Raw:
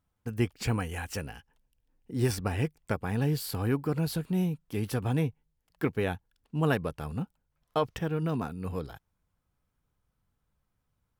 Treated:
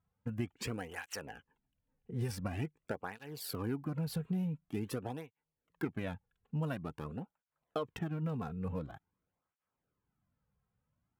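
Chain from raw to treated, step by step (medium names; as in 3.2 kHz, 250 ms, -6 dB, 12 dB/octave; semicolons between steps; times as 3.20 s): local Wiener filter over 9 samples; compression 5:1, threshold -31 dBFS, peak gain reduction 9.5 dB; cancelling through-zero flanger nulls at 0.47 Hz, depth 3.5 ms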